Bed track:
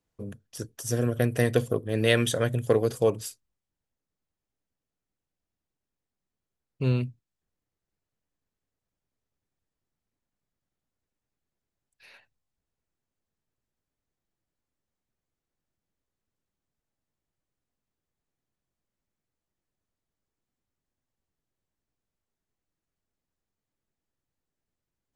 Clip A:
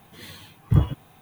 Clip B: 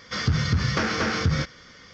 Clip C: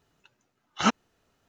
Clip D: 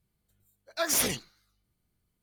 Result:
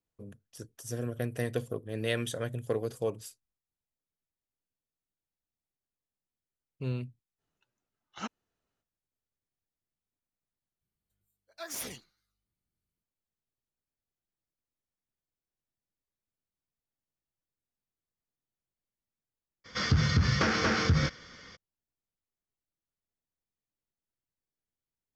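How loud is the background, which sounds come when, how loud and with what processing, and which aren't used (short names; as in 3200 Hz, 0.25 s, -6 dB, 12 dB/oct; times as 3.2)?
bed track -9 dB
7.37 add C -16 dB, fades 0.05 s
10.81 replace with D -12.5 dB
19.64 add B -2.5 dB, fades 0.02 s
not used: A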